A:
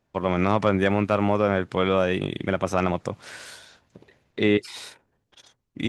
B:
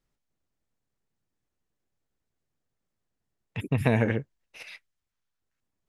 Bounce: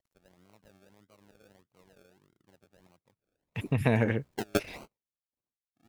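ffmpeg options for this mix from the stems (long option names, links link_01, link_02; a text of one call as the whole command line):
ffmpeg -i stem1.wav -i stem2.wav -filter_complex "[0:a]lowpass=frequency=2000:poles=1,acrusher=samples=35:mix=1:aa=0.000001:lfo=1:lforange=21:lforate=1.6,volume=-3dB[link_01];[1:a]acrusher=bits=11:mix=0:aa=0.000001,volume=-2dB,asplit=2[link_02][link_03];[link_03]apad=whole_len=259499[link_04];[link_01][link_04]sidechaingate=range=-36dB:threshold=-57dB:ratio=16:detection=peak[link_05];[link_05][link_02]amix=inputs=2:normalize=0" out.wav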